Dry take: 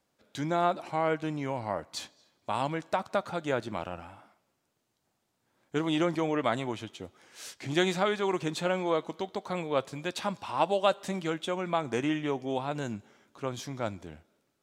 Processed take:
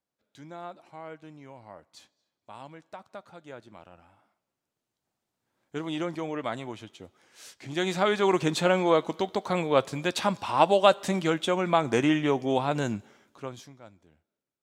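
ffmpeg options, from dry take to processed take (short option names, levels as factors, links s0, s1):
-af "volume=2,afade=t=in:st=3.86:d=2:silence=0.316228,afade=t=in:st=7.76:d=0.5:silence=0.316228,afade=t=out:st=12.84:d=0.65:silence=0.316228,afade=t=out:st=13.49:d=0.29:silence=0.237137"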